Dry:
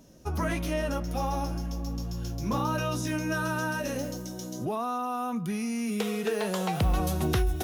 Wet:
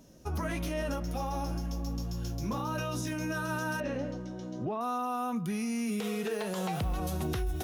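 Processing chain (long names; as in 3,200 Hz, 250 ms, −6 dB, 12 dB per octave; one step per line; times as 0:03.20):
0:03.80–0:04.81: low-pass filter 2,700 Hz 12 dB per octave
brickwall limiter −23.5 dBFS, peak gain reduction 7.5 dB
level −1.5 dB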